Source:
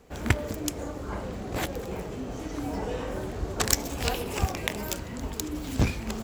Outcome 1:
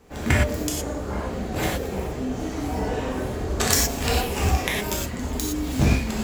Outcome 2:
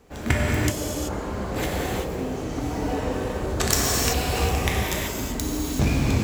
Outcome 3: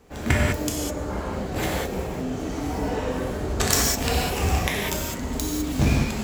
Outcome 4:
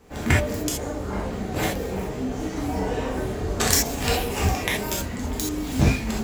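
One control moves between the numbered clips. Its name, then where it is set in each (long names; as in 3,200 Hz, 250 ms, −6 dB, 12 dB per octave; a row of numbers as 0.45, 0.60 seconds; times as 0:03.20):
reverb whose tail is shaped and stops, gate: 140, 410, 230, 100 milliseconds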